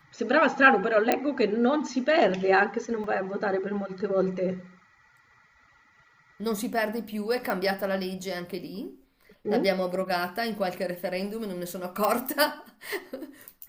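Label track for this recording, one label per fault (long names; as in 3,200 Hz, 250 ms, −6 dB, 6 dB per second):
1.120000	1.120000	click −8 dBFS
3.040000	3.040000	drop-out 2.3 ms
7.500000	7.500000	click
12.050000	12.050000	click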